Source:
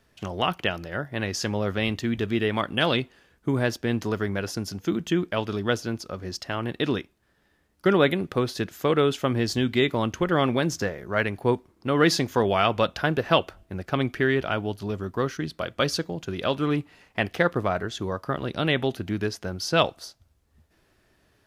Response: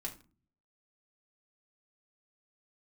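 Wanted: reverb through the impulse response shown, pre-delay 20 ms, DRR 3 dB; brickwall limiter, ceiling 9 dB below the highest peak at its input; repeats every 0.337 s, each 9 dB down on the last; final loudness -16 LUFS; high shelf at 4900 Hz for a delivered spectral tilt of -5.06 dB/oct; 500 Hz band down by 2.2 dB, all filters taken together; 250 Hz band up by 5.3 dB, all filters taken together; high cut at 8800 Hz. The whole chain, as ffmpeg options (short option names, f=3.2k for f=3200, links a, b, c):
-filter_complex "[0:a]lowpass=8.8k,equalizer=f=250:t=o:g=8.5,equalizer=f=500:t=o:g=-6,highshelf=f=4.9k:g=5,alimiter=limit=-14dB:level=0:latency=1,aecho=1:1:337|674|1011|1348:0.355|0.124|0.0435|0.0152,asplit=2[a][b];[1:a]atrim=start_sample=2205,adelay=20[c];[b][c]afir=irnorm=-1:irlink=0,volume=-2dB[d];[a][d]amix=inputs=2:normalize=0,volume=8dB"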